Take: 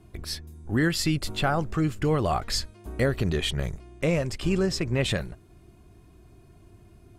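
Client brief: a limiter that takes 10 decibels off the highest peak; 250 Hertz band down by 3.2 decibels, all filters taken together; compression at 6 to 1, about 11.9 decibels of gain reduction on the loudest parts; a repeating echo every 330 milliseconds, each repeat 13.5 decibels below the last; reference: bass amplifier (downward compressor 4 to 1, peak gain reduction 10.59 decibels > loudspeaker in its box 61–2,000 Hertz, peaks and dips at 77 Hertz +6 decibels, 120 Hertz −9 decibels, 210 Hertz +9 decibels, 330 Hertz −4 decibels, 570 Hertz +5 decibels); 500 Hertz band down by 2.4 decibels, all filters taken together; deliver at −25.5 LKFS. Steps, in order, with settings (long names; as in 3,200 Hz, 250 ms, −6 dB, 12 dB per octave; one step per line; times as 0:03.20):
parametric band 250 Hz −6.5 dB
parametric band 500 Hz −3.5 dB
downward compressor 6 to 1, threshold −36 dBFS
brickwall limiter −32.5 dBFS
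repeating echo 330 ms, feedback 21%, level −13.5 dB
downward compressor 4 to 1, threshold −49 dBFS
loudspeaker in its box 61–2,000 Hz, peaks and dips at 77 Hz +6 dB, 120 Hz −9 dB, 210 Hz +9 dB, 330 Hz −4 dB, 570 Hz +5 dB
level +27.5 dB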